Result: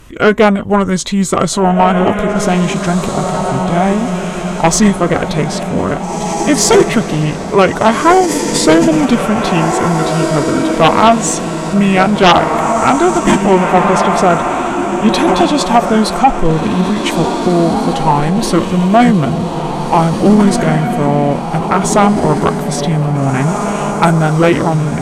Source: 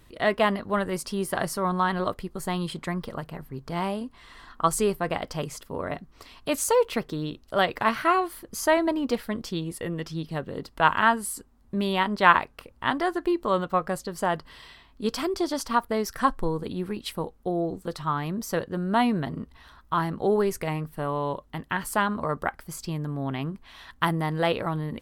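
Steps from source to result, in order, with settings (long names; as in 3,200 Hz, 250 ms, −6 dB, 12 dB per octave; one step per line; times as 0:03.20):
feedback delay with all-pass diffusion 1,773 ms, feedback 49%, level −6 dB
formants moved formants −5 semitones
sine wavefolder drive 10 dB, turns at −3.5 dBFS
level +2 dB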